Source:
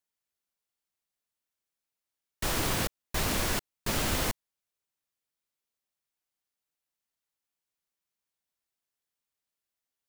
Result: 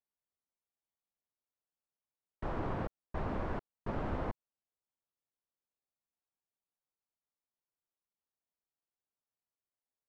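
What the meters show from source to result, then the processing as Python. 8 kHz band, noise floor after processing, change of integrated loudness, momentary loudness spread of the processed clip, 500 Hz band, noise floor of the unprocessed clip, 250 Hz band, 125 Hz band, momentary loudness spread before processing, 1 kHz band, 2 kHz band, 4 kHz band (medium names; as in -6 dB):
under -35 dB, under -85 dBFS, -9.5 dB, 5 LU, -4.0 dB, under -85 dBFS, -5.0 dB, -5.0 dB, 5 LU, -5.5 dB, -14.0 dB, -26.5 dB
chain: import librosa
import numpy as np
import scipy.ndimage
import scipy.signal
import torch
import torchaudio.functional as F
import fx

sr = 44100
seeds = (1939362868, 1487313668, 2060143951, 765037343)

y = scipy.signal.sosfilt(scipy.signal.cheby1(2, 1.0, 970.0, 'lowpass', fs=sr, output='sos'), x)
y = y * 10.0 ** (-4.0 / 20.0)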